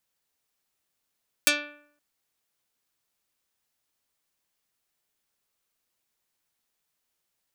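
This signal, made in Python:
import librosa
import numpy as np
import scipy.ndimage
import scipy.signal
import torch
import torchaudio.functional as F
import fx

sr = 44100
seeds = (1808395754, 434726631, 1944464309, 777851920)

y = fx.pluck(sr, length_s=0.52, note=62, decay_s=0.65, pick=0.29, brightness='dark')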